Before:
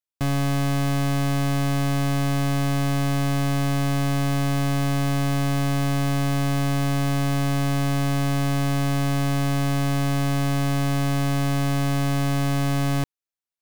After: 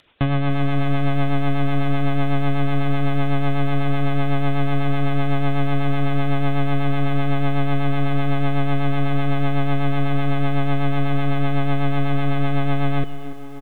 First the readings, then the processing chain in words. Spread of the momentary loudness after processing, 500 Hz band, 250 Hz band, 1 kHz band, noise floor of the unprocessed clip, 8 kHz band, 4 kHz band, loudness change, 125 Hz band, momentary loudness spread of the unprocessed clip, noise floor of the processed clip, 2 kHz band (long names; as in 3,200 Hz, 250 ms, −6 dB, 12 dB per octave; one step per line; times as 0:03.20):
1 LU, +3.5 dB, +1.0 dB, +2.5 dB, below −85 dBFS, below −20 dB, −2.5 dB, +0.5 dB, +0.5 dB, 0 LU, −24 dBFS, +1.5 dB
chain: upward compression, threshold −26 dBFS
feedback echo with a band-pass in the loop 1,076 ms, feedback 69%, band-pass 420 Hz, level −13 dB
hard clipping −21 dBFS, distortion −31 dB
downsampling to 8,000 Hz
four-comb reverb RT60 1.2 s, combs from 31 ms, DRR 12.5 dB
reverb reduction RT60 0.52 s
rotating-speaker cabinet horn 8 Hz
feedback echo at a low word length 290 ms, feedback 55%, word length 8 bits, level −15 dB
level +6 dB